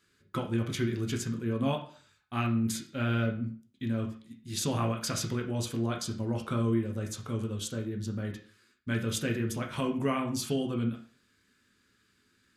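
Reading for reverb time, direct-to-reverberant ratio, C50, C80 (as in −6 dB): 0.45 s, 1.5 dB, 10.0 dB, 14.5 dB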